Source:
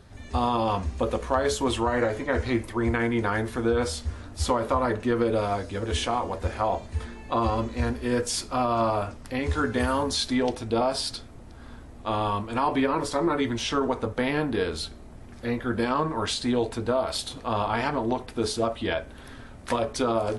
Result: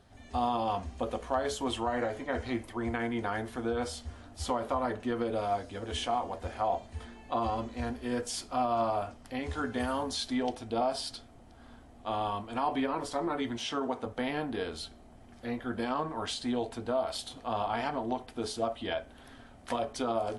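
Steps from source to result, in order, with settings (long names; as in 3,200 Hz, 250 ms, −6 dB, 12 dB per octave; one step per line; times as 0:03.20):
low-shelf EQ 380 Hz −3.5 dB
0:13.57–0:14.06: high-pass filter 110 Hz
parametric band 250 Hz +4.5 dB 0.39 octaves
hollow resonant body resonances 720/3,100 Hz, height 8 dB, ringing for 20 ms
level −8 dB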